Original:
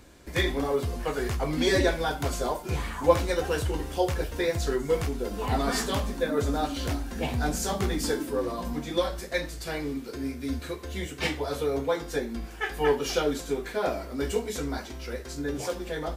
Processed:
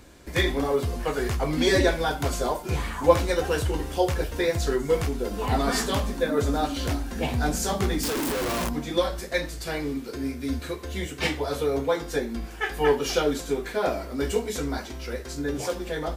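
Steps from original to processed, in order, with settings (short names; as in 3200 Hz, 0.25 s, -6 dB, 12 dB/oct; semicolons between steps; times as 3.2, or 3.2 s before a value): 8.03–8.69 infinite clipping; gain +2.5 dB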